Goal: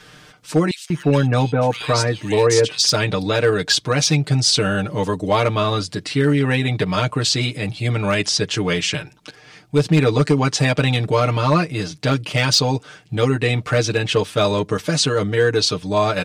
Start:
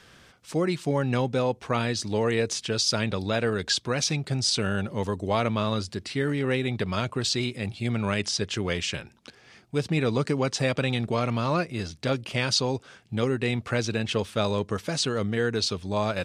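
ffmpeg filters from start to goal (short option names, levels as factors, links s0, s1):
-filter_complex "[0:a]aecho=1:1:6.6:0.88,volume=4.47,asoftclip=hard,volume=0.224,asettb=1/sr,asplit=3[s0][s1][s2];[s0]atrim=end=0.714[s3];[s1]atrim=start=0.71:end=2.87,asetpts=PTS-STARTPTS,afade=t=in:d=0.004:c=qsin,afade=t=out:st=2.156:d=0.004:c=qsin,acrossover=split=2200[s4][s5];[s4]adelay=190[s6];[s6][s5]amix=inputs=2:normalize=0,atrim=end_sample=95256[s7];[s2]atrim=start=2.866[s8];[s3][s7]acrossfade=d=0.004:c1=hsin:c2=qsin[s9];[s9][s8]acrossfade=d=0.004:c1=qsin:c2=hsin,volume=2"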